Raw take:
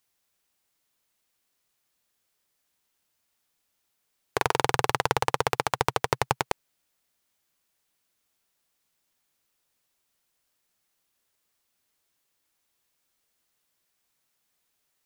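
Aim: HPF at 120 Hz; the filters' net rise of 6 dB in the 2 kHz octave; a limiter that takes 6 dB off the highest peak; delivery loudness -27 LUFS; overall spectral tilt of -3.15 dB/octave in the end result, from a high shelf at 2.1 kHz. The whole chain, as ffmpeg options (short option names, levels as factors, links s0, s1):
-af "highpass=120,equalizer=f=2000:t=o:g=4.5,highshelf=f=2100:g=5.5,volume=1.26,alimiter=limit=0.841:level=0:latency=1"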